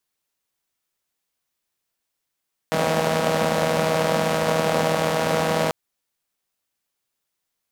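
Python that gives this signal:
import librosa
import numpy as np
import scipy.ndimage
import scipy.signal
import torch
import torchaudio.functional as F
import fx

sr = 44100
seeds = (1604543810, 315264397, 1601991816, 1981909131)

y = fx.engine_four(sr, seeds[0], length_s=2.99, rpm=4800, resonances_hz=(220.0, 540.0))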